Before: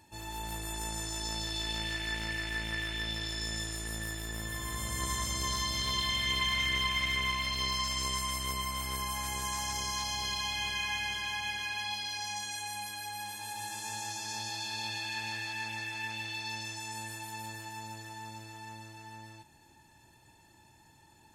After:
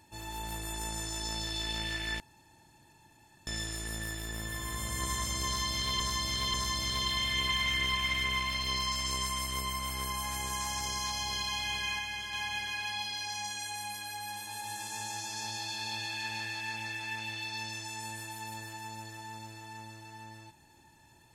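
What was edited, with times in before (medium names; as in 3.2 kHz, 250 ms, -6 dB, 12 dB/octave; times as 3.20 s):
2.20–3.47 s: room tone
5.46–6.00 s: loop, 3 plays
10.91–11.25 s: gain -3.5 dB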